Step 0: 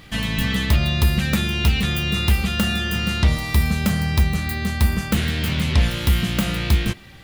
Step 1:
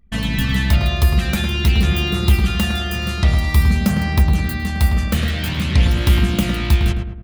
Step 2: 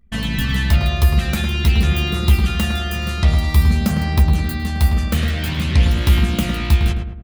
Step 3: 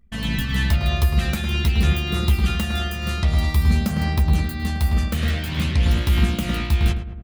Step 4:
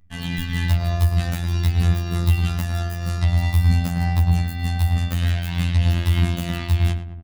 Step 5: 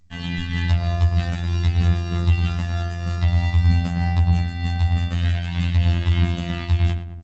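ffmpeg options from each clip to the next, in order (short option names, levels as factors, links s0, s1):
-filter_complex "[0:a]anlmdn=25.1,aphaser=in_gain=1:out_gain=1:delay=1.7:decay=0.32:speed=0.49:type=sinusoidal,asplit=2[s0][s1];[s1]adelay=106,lowpass=f=1500:p=1,volume=0.631,asplit=2[s2][s3];[s3]adelay=106,lowpass=f=1500:p=1,volume=0.49,asplit=2[s4][s5];[s5]adelay=106,lowpass=f=1500:p=1,volume=0.49,asplit=2[s6][s7];[s7]adelay=106,lowpass=f=1500:p=1,volume=0.49,asplit=2[s8][s9];[s9]adelay=106,lowpass=f=1500:p=1,volume=0.49,asplit=2[s10][s11];[s11]adelay=106,lowpass=f=1500:p=1,volume=0.49[s12];[s0][s2][s4][s6][s8][s10][s12]amix=inputs=7:normalize=0"
-filter_complex "[0:a]asplit=2[s0][s1];[s1]adelay=13,volume=0.282[s2];[s0][s2]amix=inputs=2:normalize=0,volume=0.891"
-af "tremolo=f=3.2:d=0.42,volume=0.891"
-af "aecho=1:1:1.1:0.33,afftfilt=real='hypot(re,im)*cos(PI*b)':imag='0':win_size=2048:overlap=0.75,volume=1.12"
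-ar 16000 -c:a g722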